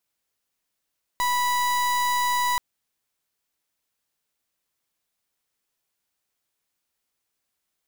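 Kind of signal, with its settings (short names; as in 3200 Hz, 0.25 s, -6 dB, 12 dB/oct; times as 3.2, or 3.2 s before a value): pulse 983 Hz, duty 36% -23 dBFS 1.38 s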